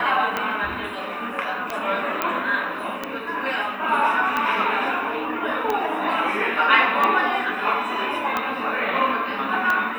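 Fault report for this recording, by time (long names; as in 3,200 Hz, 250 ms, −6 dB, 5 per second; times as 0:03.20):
scratch tick 45 rpm −10 dBFS
0:02.22: click −7 dBFS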